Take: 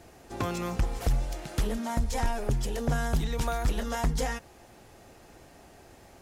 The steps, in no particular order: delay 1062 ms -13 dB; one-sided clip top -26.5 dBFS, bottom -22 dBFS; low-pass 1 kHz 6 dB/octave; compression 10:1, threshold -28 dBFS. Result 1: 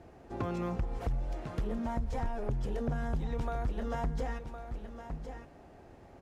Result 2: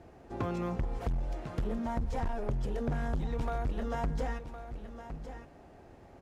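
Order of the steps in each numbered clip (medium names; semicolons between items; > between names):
delay > compression > one-sided clip > low-pass; low-pass > one-sided clip > delay > compression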